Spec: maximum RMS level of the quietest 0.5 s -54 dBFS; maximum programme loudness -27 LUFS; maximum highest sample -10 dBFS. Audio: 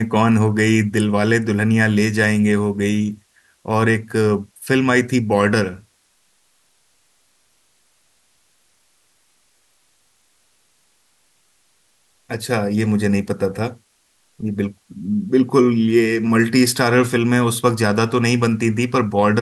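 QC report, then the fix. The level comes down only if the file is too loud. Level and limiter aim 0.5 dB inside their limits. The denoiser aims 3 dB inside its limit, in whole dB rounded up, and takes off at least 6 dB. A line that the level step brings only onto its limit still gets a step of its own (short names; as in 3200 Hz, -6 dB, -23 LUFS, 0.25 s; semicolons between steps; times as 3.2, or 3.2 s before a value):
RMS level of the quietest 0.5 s -61 dBFS: OK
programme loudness -17.5 LUFS: fail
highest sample -4.0 dBFS: fail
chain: gain -10 dB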